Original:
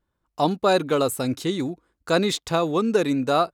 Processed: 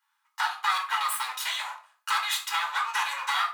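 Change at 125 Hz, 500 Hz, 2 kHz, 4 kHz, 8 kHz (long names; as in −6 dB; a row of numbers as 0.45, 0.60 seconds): below −40 dB, −33.0 dB, +3.5 dB, +0.5 dB, 0.0 dB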